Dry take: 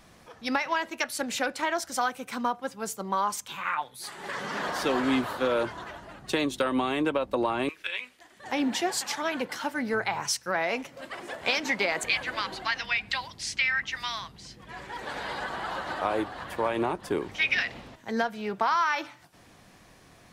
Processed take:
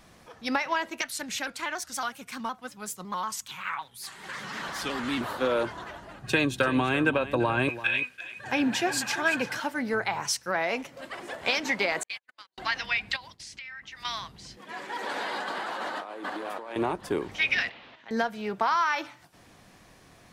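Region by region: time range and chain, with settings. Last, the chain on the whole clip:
0:01.01–0:05.21: parametric band 500 Hz −10 dB 2.1 octaves + pitch modulation by a square or saw wave square 5.4 Hz, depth 100 cents
0:06.23–0:09.60: parametric band 120 Hz +13 dB 0.74 octaves + hollow resonant body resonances 1,600/2,500 Hz, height 15 dB, ringing for 35 ms + single-tap delay 339 ms −14 dB
0:12.03–0:12.58: noise gate −28 dBFS, range −52 dB + spectral tilt +2.5 dB per octave + downward compressor 1.5 to 1, threshold −57 dBFS
0:13.16–0:14.05: downward expander −41 dBFS + downward compressor 4 to 1, threshold −42 dBFS
0:14.57–0:16.76: delay that plays each chunk backwards 432 ms, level −5 dB + high-pass filter 210 Hz 24 dB per octave + compressor whose output falls as the input rises −35 dBFS
0:17.69–0:18.11: low-pass filter 3,500 Hz 24 dB per octave + downward compressor 3 to 1, threshold −44 dBFS + spectral tilt +4 dB per octave
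whole clip: no processing

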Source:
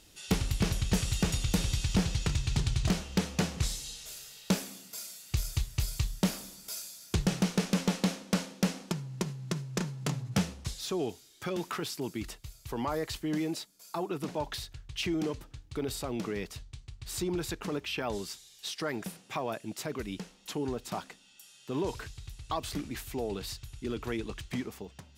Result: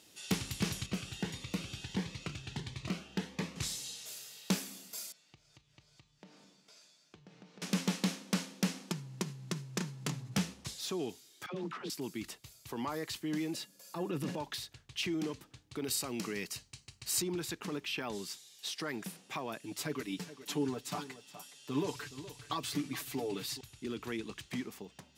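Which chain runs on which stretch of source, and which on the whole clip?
0:00.86–0:03.56: bass and treble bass −5 dB, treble −13 dB + phaser whose notches keep moving one way rising 1.5 Hz
0:05.12–0:07.62: high-frequency loss of the air 130 metres + tuned comb filter 150 Hz, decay 0.32 s, mix 70% + downward compressor 4 to 1, threshold −53 dBFS
0:11.46–0:11.90: head-to-tape spacing loss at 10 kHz 21 dB + all-pass dispersion lows, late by 82 ms, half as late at 500 Hz + highs frequency-modulated by the lows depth 0.12 ms
0:13.54–0:14.38: transient designer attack −6 dB, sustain +4 dB + low-shelf EQ 230 Hz +10 dB + hollow resonant body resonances 540/1,700/2,800 Hz, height 14 dB, ringing for 100 ms
0:15.84–0:17.22: high-shelf EQ 2,500 Hz +8.5 dB + notch filter 3,500 Hz, Q 6.9
0:19.63–0:23.61: mains-hum notches 50/100 Hz + comb filter 6.9 ms, depth 89% + single-tap delay 419 ms −15.5 dB
whole clip: dynamic equaliser 600 Hz, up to −7 dB, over −49 dBFS, Q 1.2; high-pass filter 160 Hz 12 dB per octave; parametric band 1,400 Hz −2.5 dB 0.2 octaves; level −1.5 dB

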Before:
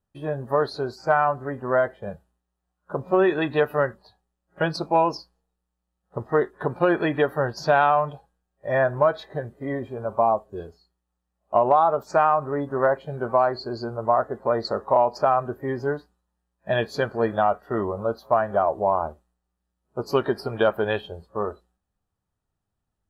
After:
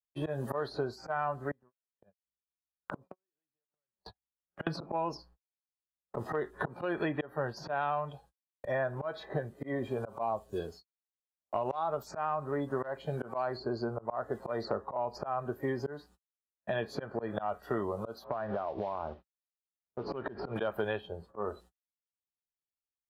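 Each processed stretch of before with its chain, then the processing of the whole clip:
0:01.51–0:04.67: downward compressor 16 to 1, threshold −26 dBFS + gate with flip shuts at −28 dBFS, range −34 dB
0:18.24–0:20.56: downward compressor, threshold −32 dBFS + noise that follows the level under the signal 24 dB + Gaussian smoothing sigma 3 samples
whole clip: noise gate −50 dBFS, range −57 dB; volume swells 263 ms; multiband upward and downward compressor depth 100%; level −5.5 dB

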